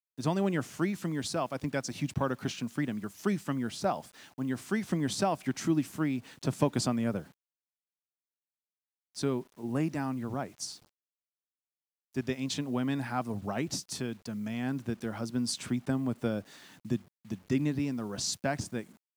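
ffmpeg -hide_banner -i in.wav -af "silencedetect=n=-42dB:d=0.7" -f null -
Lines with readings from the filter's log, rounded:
silence_start: 7.23
silence_end: 9.16 | silence_duration: 1.94
silence_start: 10.75
silence_end: 12.16 | silence_duration: 1.41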